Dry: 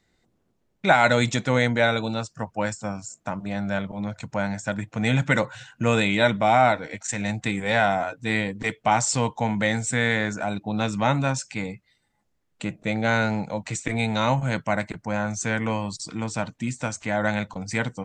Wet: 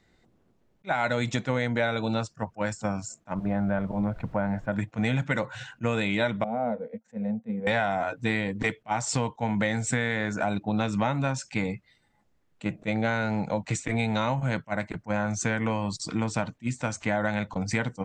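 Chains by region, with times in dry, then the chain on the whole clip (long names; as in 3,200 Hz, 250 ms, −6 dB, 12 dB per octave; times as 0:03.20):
0:03.34–0:04.72: low-pass filter 1,400 Hz + background noise brown −49 dBFS
0:06.44–0:07.67: downward expander −36 dBFS + pair of resonant band-passes 330 Hz, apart 1.1 octaves
whole clip: high-shelf EQ 5,100 Hz −8.5 dB; downward compressor 6 to 1, threshold −27 dBFS; level that may rise only so fast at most 500 dB per second; level +4.5 dB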